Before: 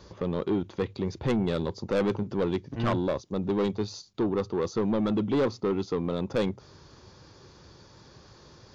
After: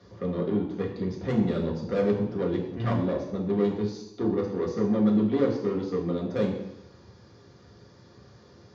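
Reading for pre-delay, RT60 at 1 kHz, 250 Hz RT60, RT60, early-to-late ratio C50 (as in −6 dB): 3 ms, 0.85 s, 0.80 s, 0.85 s, 6.0 dB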